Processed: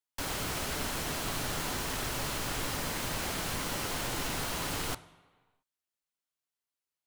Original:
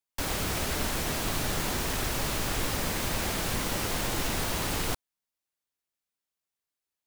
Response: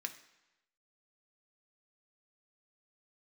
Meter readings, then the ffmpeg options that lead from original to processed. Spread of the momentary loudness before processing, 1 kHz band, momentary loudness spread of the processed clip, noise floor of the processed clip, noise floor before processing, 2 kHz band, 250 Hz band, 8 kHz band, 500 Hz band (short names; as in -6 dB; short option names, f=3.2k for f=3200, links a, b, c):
1 LU, -3.0 dB, 1 LU, under -85 dBFS, under -85 dBFS, -3.0 dB, -5.0 dB, -3.5 dB, -4.5 dB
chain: -filter_complex "[0:a]asplit=2[a][b];[1:a]atrim=start_sample=2205,afade=t=out:st=0.43:d=0.01,atrim=end_sample=19404,asetrate=24696,aresample=44100[c];[b][c]afir=irnorm=-1:irlink=0,volume=-7.5dB[d];[a][d]amix=inputs=2:normalize=0,volume=-6.5dB"